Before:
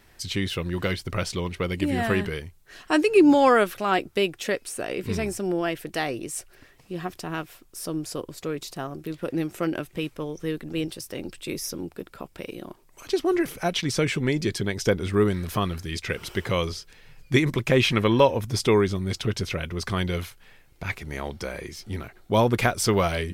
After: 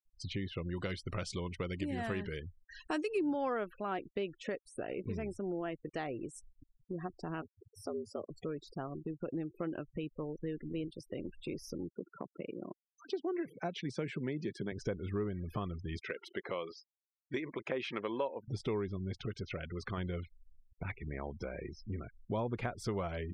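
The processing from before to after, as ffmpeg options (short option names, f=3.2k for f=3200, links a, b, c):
-filter_complex "[0:a]asplit=3[a][b][c];[a]afade=t=out:st=0.63:d=0.02[d];[b]equalizer=f=7.6k:w=0.45:g=12.5,afade=t=in:st=0.63:d=0.02,afade=t=out:st=3.18:d=0.02[e];[c]afade=t=in:st=3.18:d=0.02[f];[d][e][f]amix=inputs=3:normalize=0,asettb=1/sr,asplit=3[g][h][i];[g]atrim=end=4.604[j];[h]atrim=start=4.6:end=6.15,asetpts=PTS-STARTPTS,afade=t=in:d=0.004:c=qsin,afade=t=out:st=1.546:d=0.004:c=qsin,aeval=exprs='val(0)*gte(abs(val(0)),0.01)':c=same[k];[i]atrim=start=6.146[l];[j][k]acrossfade=d=0.004:c1=hsin:c2=qsin[m];[m][l]acrossfade=d=0.004:c1=qsin:c2=hsin,asplit=3[n][o][p];[n]afade=t=out:st=7.41:d=0.02[q];[o]afreqshift=91,afade=t=in:st=7.41:d=0.02,afade=t=out:st=8.29:d=0.02[r];[p]afade=t=in:st=8.29:d=0.02[s];[q][r][s]amix=inputs=3:normalize=0,asettb=1/sr,asplit=3[t][u][v];[t]atrim=end=11.904[w];[u]atrim=start=11.9:end=14.72,asetpts=PTS-STARTPTS,afade=t=in:d=0.004:c=qsin,afade=t=out:st=2.816:d=0.004:c=qsin,highpass=f=130:w=0.5412,highpass=f=130:w=1.3066[x];[v]atrim=start=14.716[y];[w][x]acrossfade=d=0.004:c1=hsin:c2=qsin[z];[z][y]acrossfade=d=0.004:c1=qsin:c2=hsin,asettb=1/sr,asplit=3[aa][ab][ac];[aa]atrim=end=15.994[ad];[ab]atrim=start=15.99:end=18.48,asetpts=PTS-STARTPTS,afade=t=in:d=0.004:c=qsin,afade=t=out:st=2.486:d=0.004:c=qsin,highpass=350[ae];[ac]atrim=start=18.476[af];[ad][ae]acrossfade=d=0.004:c1=hsin:c2=qsin[ag];[ag][af]acrossfade=d=0.004:c1=qsin:c2=hsin,asettb=1/sr,asplit=3[ah][ai][aj];[ah]atrim=end=19.254[ak];[ai]atrim=start=19.25:end=19.98,asetpts=PTS-STARTPTS,afade=t=in:d=0.004:c=qsin,afade=t=out:st=0.726:d=0.004:c=qsin,lowshelf=f=400:g=-5.5[al];[aj]atrim=start=19.976[am];[ak][al]acrossfade=d=0.004:c1=hsin:c2=qsin[an];[an][am]acrossfade=d=0.004:c1=qsin:c2=hsin,afftfilt=real='re*gte(hypot(re,im),0.02)':imag='im*gte(hypot(re,im),0.02)':win_size=1024:overlap=0.75,lowpass=f=1.4k:p=1,acompressor=threshold=-37dB:ratio=2.5,volume=-2dB"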